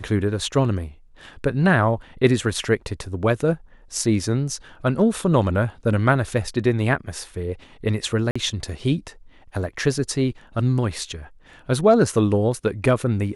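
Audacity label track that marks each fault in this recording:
8.310000	8.360000	dropout 45 ms

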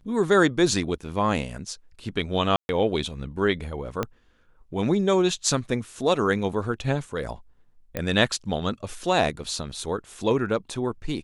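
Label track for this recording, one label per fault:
2.560000	2.690000	dropout 131 ms
4.030000	4.030000	pop -12 dBFS
7.970000	7.970000	pop -14 dBFS

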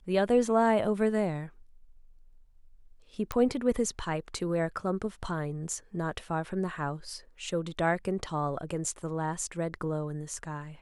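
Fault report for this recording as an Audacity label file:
3.320000	3.320000	pop -17 dBFS

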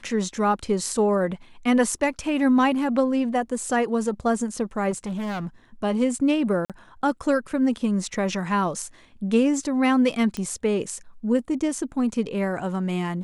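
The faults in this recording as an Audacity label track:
4.900000	5.470000	clipped -26 dBFS
6.650000	6.700000	dropout 47 ms
10.370000	10.370000	pop -16 dBFS

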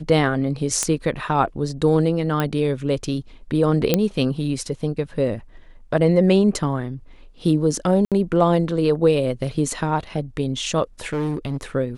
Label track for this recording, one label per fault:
0.830000	0.830000	pop -6 dBFS
2.400000	2.400000	pop -9 dBFS
3.940000	3.940000	pop -2 dBFS
8.050000	8.120000	dropout 67 ms
11.130000	11.630000	clipped -20 dBFS

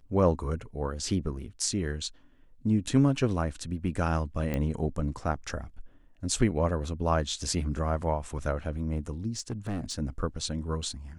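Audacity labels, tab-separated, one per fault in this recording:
4.540000	4.540000	pop -18 dBFS
9.370000	9.940000	clipped -28 dBFS

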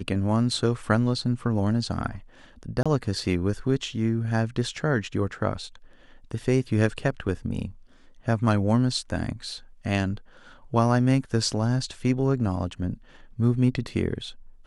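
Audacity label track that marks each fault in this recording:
2.830000	2.860000	dropout 26 ms

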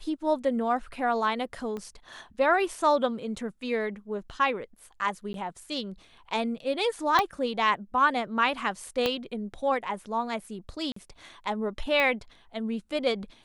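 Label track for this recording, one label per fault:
1.770000	1.770000	pop -24 dBFS
5.330000	5.340000	dropout 12 ms
7.190000	7.190000	pop -10 dBFS
9.060000	9.060000	pop -12 dBFS
10.920000	10.960000	dropout 44 ms
12.000000	12.000000	pop -14 dBFS

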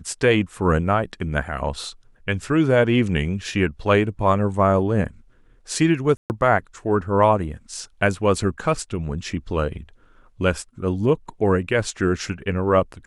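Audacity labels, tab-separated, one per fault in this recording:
6.170000	6.300000	dropout 129 ms

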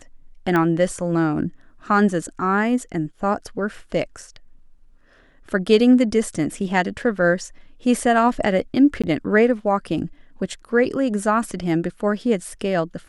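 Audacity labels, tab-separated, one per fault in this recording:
0.560000	0.560000	pop -10 dBFS
9.020000	9.040000	dropout 16 ms

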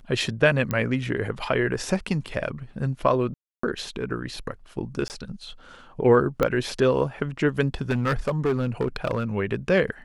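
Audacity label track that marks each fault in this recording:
0.710000	0.710000	pop -12 dBFS
3.340000	3.630000	dropout 294 ms
5.080000	5.100000	dropout 19 ms
6.430000	6.430000	pop -9 dBFS
7.810000	9.240000	clipped -18.5 dBFS

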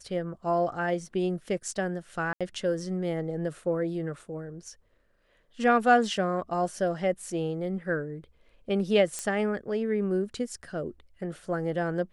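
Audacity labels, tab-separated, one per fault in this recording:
2.330000	2.410000	dropout 76 ms
9.190000	9.190000	pop -17 dBFS

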